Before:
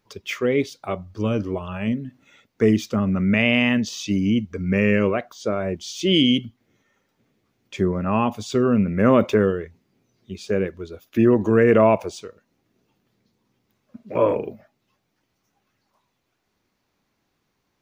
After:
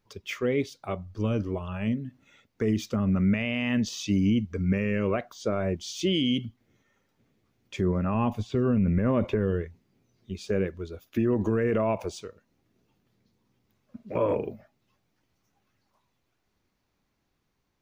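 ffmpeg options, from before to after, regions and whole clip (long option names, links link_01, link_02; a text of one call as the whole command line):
ffmpeg -i in.wav -filter_complex "[0:a]asettb=1/sr,asplit=3[link_01][link_02][link_03];[link_01]atrim=end=8.144[link_04];[link_02]atrim=start=8.14:end=9.63,asetpts=PTS-STARTPTS,afade=type=in:duration=0.004:curve=qsin,afade=type=out:start_time=1.486:duration=0.004:curve=qsin,lowshelf=frequency=130:gain=7.5,bandreject=frequency=1300:width=11,acrossover=split=3100[link_05][link_06];[link_06]acompressor=threshold=-51dB:ratio=4:attack=1:release=60[link_07];[link_05][link_07]amix=inputs=2:normalize=0[link_08];[link_03]atrim=start=9.626[link_09];[link_04][link_08]acrossfade=duration=0.004:curve1=hsin:curve2=qsin[link_10];[link_10][link_09]acrossfade=duration=0.004:curve1=qsin:curve2=hsin,lowshelf=frequency=88:gain=10.5,dynaudnorm=framelen=650:gausssize=9:maxgain=11.5dB,alimiter=limit=-10dB:level=0:latency=1:release=53,volume=-6dB" out.wav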